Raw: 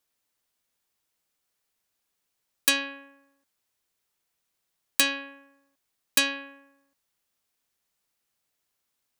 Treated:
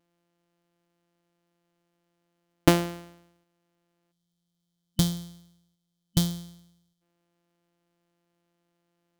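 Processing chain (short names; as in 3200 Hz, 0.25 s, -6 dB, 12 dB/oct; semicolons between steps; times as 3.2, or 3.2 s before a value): sample sorter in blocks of 256 samples; spectral gain 4.12–7.02, 210–3000 Hz -17 dB; small resonant body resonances 290/590/3000 Hz, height 14 dB, ringing for 65 ms; gain +1.5 dB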